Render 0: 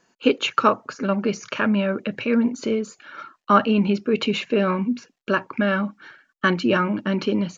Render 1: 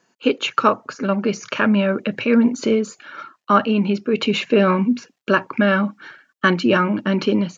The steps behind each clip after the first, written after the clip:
high-pass filter 85 Hz
automatic gain control gain up to 6 dB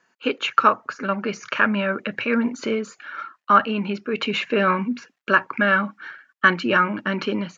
parametric band 1,600 Hz +10.5 dB 1.8 octaves
level −7.5 dB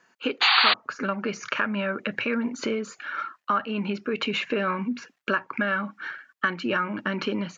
downward compressor 3 to 1, threshold −28 dBFS, peak gain reduction 13.5 dB
sound drawn into the spectrogram noise, 0:00.41–0:00.74, 700–4,700 Hz −22 dBFS
level +2.5 dB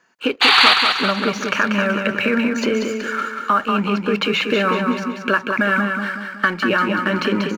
leveller curve on the samples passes 1
on a send: repeating echo 188 ms, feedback 50%, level −5 dB
on the sum: level +3.5 dB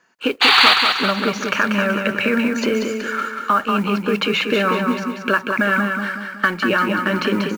noise that follows the level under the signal 30 dB

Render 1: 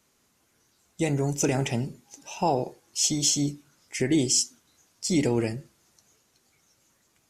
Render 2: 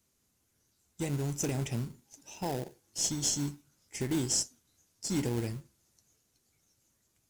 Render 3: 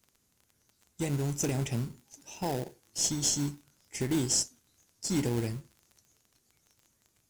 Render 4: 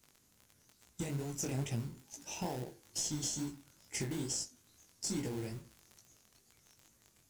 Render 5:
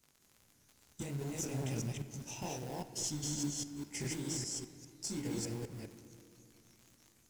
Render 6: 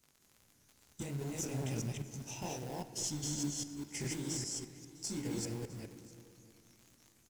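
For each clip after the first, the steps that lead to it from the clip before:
drawn EQ curve 100 Hz 0 dB, 150 Hz −4 dB, 880 Hz −9 dB; in parallel at −9 dB: sample-rate reduction 1,200 Hz, jitter 20%; on the sum: high-shelf EQ 4,500 Hz +10 dB; level −4.5 dB
surface crackle 23 per second −47 dBFS; level +2 dB
in parallel at 0 dB: brickwall limiter −21.5 dBFS, peak gain reduction 7 dB; on the sum: downward compressor 6 to 1, threshold −32 dBFS, peak gain reduction 12 dB; chorus effect 2.3 Hz, delay 16.5 ms, depth 7.4 ms
delay that plays each chunk backwards 202 ms, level 0 dB; on a send at −10 dB: convolution reverb RT60 2.6 s, pre-delay 7 ms; on the sum: level −3.5 dB
single-tap delay 656 ms −21 dB

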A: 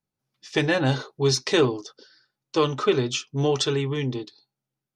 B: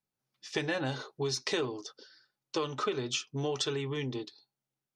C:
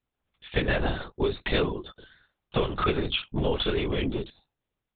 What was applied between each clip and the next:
downward compressor 5 to 1, threshold −25 dBFS, peak gain reduction 10 dB; low-shelf EQ 270 Hz −5.5 dB; level −2.5 dB
linear-prediction vocoder at 8 kHz whisper; level +7 dB

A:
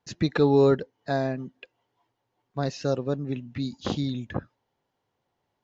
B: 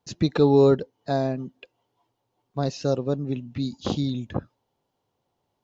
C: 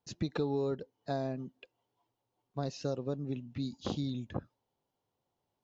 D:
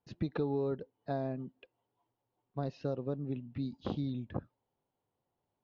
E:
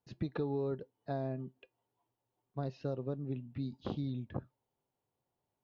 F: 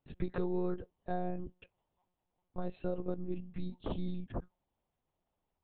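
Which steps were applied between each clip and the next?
parametric band 1,800 Hz −8 dB 0.84 octaves; level +2.5 dB
downward compressor 6 to 1, threshold −21 dBFS, peak gain reduction 9 dB; level −8 dB
high-frequency loss of the air 290 metres
tuned comb filter 130 Hz, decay 0.16 s, harmonics odd, mix 40%; level +1.5 dB
one-pitch LPC vocoder at 8 kHz 180 Hz; level +2 dB

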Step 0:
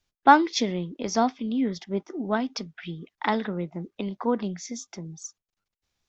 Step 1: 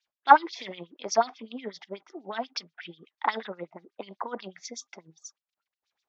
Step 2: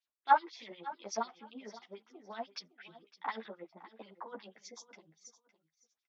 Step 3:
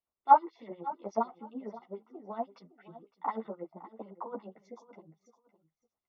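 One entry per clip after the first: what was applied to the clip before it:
auto-filter band-pass sine 8.2 Hz 620–4,900 Hz; level +5.5 dB
repeating echo 560 ms, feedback 20%, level −17 dB; string-ensemble chorus; level −7.5 dB
Savitzky-Golay smoothing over 65 samples; low-shelf EQ 140 Hz +7 dB; level +6 dB

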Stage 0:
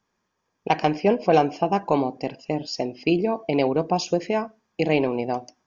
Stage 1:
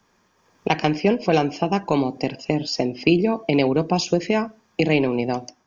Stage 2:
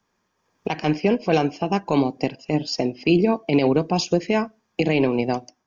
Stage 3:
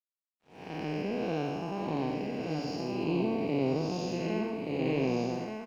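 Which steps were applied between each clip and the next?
automatic gain control; dynamic equaliser 720 Hz, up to −7 dB, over −28 dBFS, Q 0.77; multiband upward and downward compressor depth 40%
brickwall limiter −11 dBFS, peak gain reduction 8.5 dB; expander for the loud parts 1.5 to 1, over −42 dBFS; level +3.5 dB
spectrum smeared in time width 300 ms; single-tap delay 1,177 ms −4.5 dB; dead-zone distortion −53 dBFS; level −7 dB

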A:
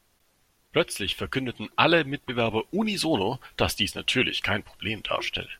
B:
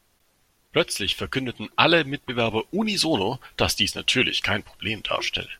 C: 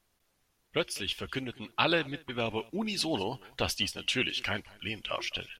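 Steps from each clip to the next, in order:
dynamic equaliser 5,400 Hz, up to +7 dB, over −43 dBFS, Q 1.1; level +1.5 dB
single-tap delay 205 ms −23.5 dB; level −9 dB

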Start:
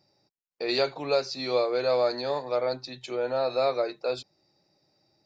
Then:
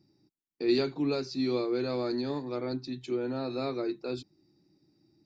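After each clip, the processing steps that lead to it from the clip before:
low shelf with overshoot 420 Hz +10 dB, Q 3
level −6.5 dB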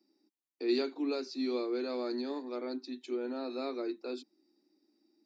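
Butterworth high-pass 220 Hz 72 dB per octave
level −4 dB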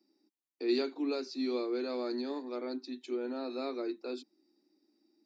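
no processing that can be heard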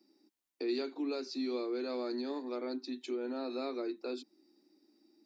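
downward compressor 2 to 1, threshold −43 dBFS, peak gain reduction 10 dB
level +4.5 dB

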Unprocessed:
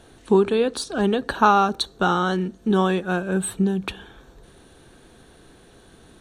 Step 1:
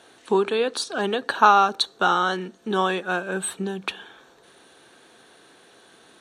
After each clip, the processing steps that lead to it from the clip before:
meter weighting curve A
level +1.5 dB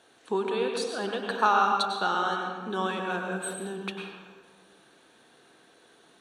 convolution reverb RT60 1.6 s, pre-delay 93 ms, DRR 2 dB
level −8 dB

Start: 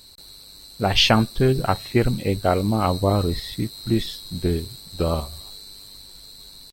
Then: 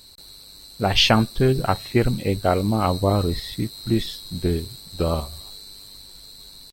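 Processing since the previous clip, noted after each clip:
no processing that can be heard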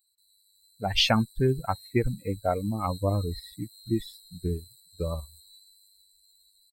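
spectral dynamics exaggerated over time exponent 2
automatic gain control gain up to 3 dB
level −6 dB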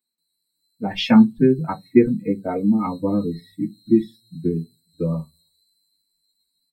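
convolution reverb RT60 0.15 s, pre-delay 3 ms, DRR −4.5 dB
level −11.5 dB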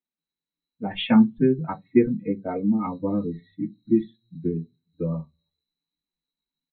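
downsampling to 8,000 Hz
level −4 dB

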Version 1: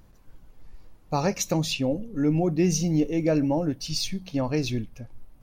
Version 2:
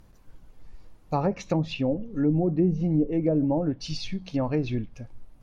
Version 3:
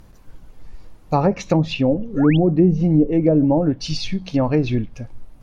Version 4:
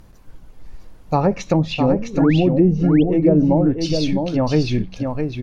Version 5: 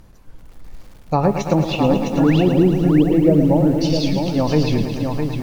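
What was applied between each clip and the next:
treble cut that deepens with the level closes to 570 Hz, closed at −18 dBFS
sound drawn into the spectrogram rise, 0:02.14–0:02.37, 340–3,600 Hz −38 dBFS; level +8 dB
single-tap delay 659 ms −5.5 dB
feedback echo at a low word length 110 ms, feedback 80%, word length 7 bits, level −9 dB

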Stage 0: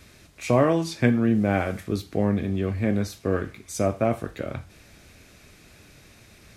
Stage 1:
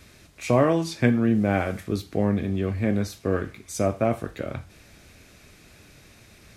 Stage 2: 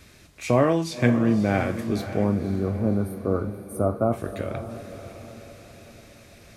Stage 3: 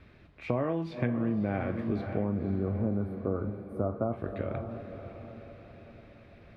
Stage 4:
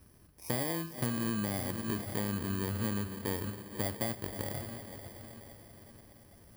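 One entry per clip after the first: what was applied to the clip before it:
no processing that can be heard
gain on a spectral selection 0:02.25–0:04.13, 1,500–8,500 Hz −26 dB; feedback delay with all-pass diffusion 547 ms, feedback 48%, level −11 dB
downward compressor 6 to 1, threshold −22 dBFS, peak gain reduction 9 dB; high-frequency loss of the air 410 metres; level −2.5 dB
samples in bit-reversed order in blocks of 32 samples; level −4 dB

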